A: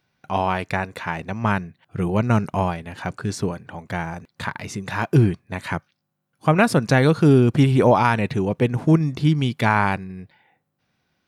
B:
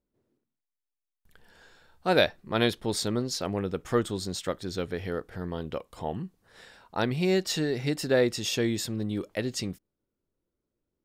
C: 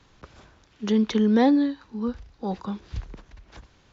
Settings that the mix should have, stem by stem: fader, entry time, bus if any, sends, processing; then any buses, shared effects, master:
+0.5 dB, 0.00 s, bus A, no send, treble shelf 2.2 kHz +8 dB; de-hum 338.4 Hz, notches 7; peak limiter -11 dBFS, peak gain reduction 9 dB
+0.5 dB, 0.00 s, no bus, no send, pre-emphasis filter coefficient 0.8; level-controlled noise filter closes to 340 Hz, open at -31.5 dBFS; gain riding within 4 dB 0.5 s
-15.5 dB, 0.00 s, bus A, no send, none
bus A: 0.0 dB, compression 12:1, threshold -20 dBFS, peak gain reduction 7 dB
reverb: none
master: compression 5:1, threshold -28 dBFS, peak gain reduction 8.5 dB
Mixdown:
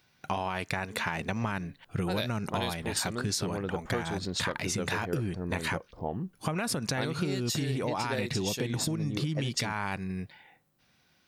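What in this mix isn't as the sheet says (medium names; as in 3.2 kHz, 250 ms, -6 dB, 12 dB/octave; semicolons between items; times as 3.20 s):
stem A: missing de-hum 338.4 Hz, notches 7; stem B +0.5 dB -> +11.5 dB; stem C -15.5 dB -> -26.0 dB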